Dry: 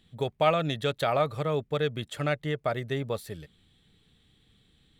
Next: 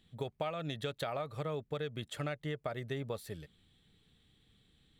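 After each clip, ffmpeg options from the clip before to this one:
ffmpeg -i in.wav -af "acompressor=threshold=-29dB:ratio=10,volume=-4.5dB" out.wav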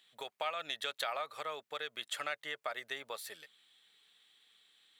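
ffmpeg -i in.wav -af "highpass=1000,volume=6dB" out.wav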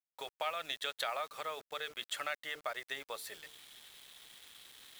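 ffmpeg -i in.wav -af "bandreject=frequency=50:width_type=h:width=6,bandreject=frequency=100:width_type=h:width=6,bandreject=frequency=150:width_type=h:width=6,bandreject=frequency=200:width_type=h:width=6,bandreject=frequency=250:width_type=h:width=6,bandreject=frequency=300:width_type=h:width=6,bandreject=frequency=350:width_type=h:width=6,bandreject=frequency=400:width_type=h:width=6,bandreject=frequency=450:width_type=h:width=6,areverse,acompressor=mode=upward:threshold=-46dB:ratio=2.5,areverse,acrusher=bits=8:mix=0:aa=0.000001" out.wav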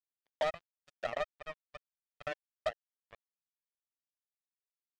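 ffmpeg -i in.wav -af "highpass=frequency=610:width_type=q:width=6.7,afftfilt=real='re*gte(hypot(re,im),0.0562)':imag='im*gte(hypot(re,im),0.0562)':win_size=1024:overlap=0.75,acrusher=bits=3:mix=0:aa=0.5,volume=-7.5dB" out.wav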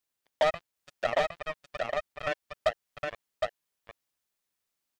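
ffmpeg -i in.wav -filter_complex "[0:a]asplit=2[link_01][link_02];[link_02]alimiter=level_in=10dB:limit=-24dB:level=0:latency=1:release=193,volume=-10dB,volume=-2dB[link_03];[link_01][link_03]amix=inputs=2:normalize=0,aecho=1:1:763:0.668,volume=5.5dB" out.wav

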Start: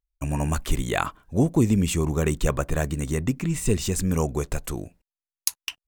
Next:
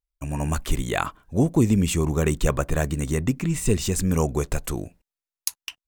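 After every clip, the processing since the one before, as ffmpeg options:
ffmpeg -i in.wav -af "dynaudnorm=framelen=170:gausssize=5:maxgain=6.5dB,volume=-4dB" out.wav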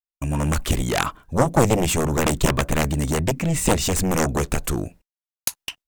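ffmpeg -i in.wav -af "aeval=exprs='0.531*(cos(1*acos(clip(val(0)/0.531,-1,1)))-cos(1*PI/2))+0.237*(cos(7*acos(clip(val(0)/0.531,-1,1)))-cos(7*PI/2))':channel_layout=same,agate=range=-33dB:threshold=-41dB:ratio=3:detection=peak" out.wav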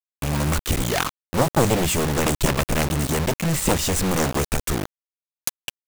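ffmpeg -i in.wav -af "acrusher=bits=3:mix=0:aa=0.000001,volume=-2dB" out.wav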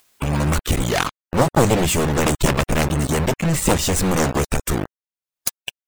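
ffmpeg -i in.wav -af "afftdn=noise_reduction=16:noise_floor=-36,acompressor=mode=upward:threshold=-25dB:ratio=2.5,volume=3dB" out.wav

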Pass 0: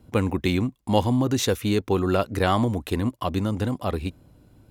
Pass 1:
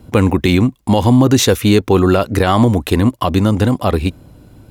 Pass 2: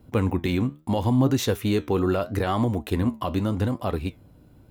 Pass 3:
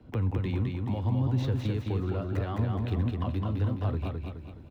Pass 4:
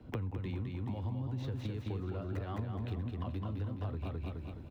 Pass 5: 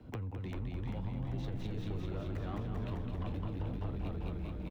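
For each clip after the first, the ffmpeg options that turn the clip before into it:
ffmpeg -i in.wav -af "alimiter=level_in=13dB:limit=-1dB:release=50:level=0:latency=1,volume=-1dB" out.wav
ffmpeg -i in.wav -af "equalizer=frequency=8500:width_type=o:width=2.5:gain=-11.5,flanger=delay=6.5:depth=8.5:regen=74:speed=0.76:shape=triangular,highshelf=frequency=3800:gain=8.5,volume=-6.5dB" out.wav
ffmpeg -i in.wav -filter_complex "[0:a]acrossover=split=130[link_01][link_02];[link_02]acompressor=threshold=-35dB:ratio=6[link_03];[link_01][link_03]amix=inputs=2:normalize=0,acrossover=split=150|490|4800[link_04][link_05][link_06][link_07];[link_07]acrusher=samples=26:mix=1:aa=0.000001:lfo=1:lforange=41.6:lforate=2.9[link_08];[link_04][link_05][link_06][link_08]amix=inputs=4:normalize=0,aecho=1:1:211|422|633|844|1055:0.668|0.287|0.124|0.0531|0.0228" out.wav
ffmpeg -i in.wav -af "acompressor=threshold=-34dB:ratio=10" out.wav
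ffmpeg -i in.wav -filter_complex "[0:a]asoftclip=type=tanh:threshold=-33.5dB,asplit=2[link_01][link_02];[link_02]asplit=7[link_03][link_04][link_05][link_06][link_07][link_08][link_09];[link_03]adelay=393,afreqshift=-140,volume=-3dB[link_10];[link_04]adelay=786,afreqshift=-280,volume=-8.4dB[link_11];[link_05]adelay=1179,afreqshift=-420,volume=-13.7dB[link_12];[link_06]adelay=1572,afreqshift=-560,volume=-19.1dB[link_13];[link_07]adelay=1965,afreqshift=-700,volume=-24.4dB[link_14];[link_08]adelay=2358,afreqshift=-840,volume=-29.8dB[link_15];[link_09]adelay=2751,afreqshift=-980,volume=-35.1dB[link_16];[link_10][link_11][link_12][link_13][link_14][link_15][link_16]amix=inputs=7:normalize=0[link_17];[link_01][link_17]amix=inputs=2:normalize=0" out.wav

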